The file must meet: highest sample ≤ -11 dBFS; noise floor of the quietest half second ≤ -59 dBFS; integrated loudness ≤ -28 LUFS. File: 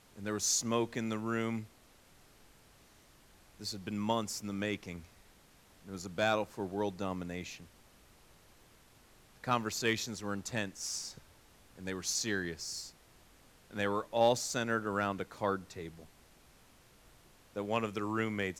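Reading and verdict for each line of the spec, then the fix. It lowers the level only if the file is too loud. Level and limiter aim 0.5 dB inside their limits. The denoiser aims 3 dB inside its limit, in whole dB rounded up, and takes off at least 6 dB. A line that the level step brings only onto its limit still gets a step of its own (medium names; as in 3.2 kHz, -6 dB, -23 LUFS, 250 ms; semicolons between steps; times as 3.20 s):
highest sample -17.0 dBFS: pass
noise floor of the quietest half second -62 dBFS: pass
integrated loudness -35.0 LUFS: pass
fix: none needed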